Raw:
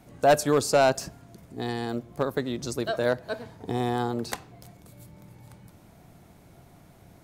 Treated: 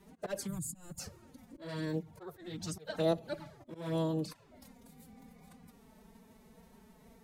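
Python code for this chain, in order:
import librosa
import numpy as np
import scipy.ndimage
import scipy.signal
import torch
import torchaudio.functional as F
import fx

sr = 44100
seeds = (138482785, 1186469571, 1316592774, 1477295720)

y = fx.auto_swell(x, sr, attack_ms=224.0)
y = fx.spec_box(y, sr, start_s=0.47, length_s=0.52, low_hz=250.0, high_hz=6600.0, gain_db=-24)
y = fx.env_flanger(y, sr, rest_ms=7.4, full_db=-25.0)
y = fx.pitch_keep_formants(y, sr, semitones=5.0)
y = y * librosa.db_to_amplitude(-3.0)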